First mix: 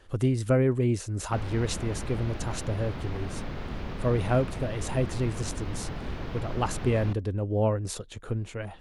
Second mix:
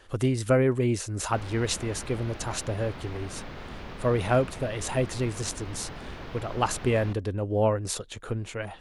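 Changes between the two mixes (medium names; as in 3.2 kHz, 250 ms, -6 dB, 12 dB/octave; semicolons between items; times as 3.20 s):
speech +5.0 dB; master: add bass shelf 390 Hz -7 dB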